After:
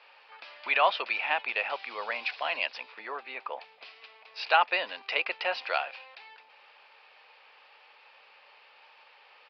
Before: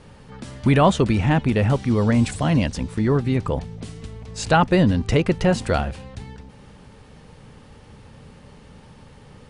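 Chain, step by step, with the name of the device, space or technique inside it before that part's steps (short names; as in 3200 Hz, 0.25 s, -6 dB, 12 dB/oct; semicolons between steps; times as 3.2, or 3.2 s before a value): 2.92–3.61 high shelf 2800 Hz -9.5 dB; musical greeting card (downsampling 11025 Hz; HPF 680 Hz 24 dB/oct; bell 2500 Hz +11 dB 0.31 oct); gain -4 dB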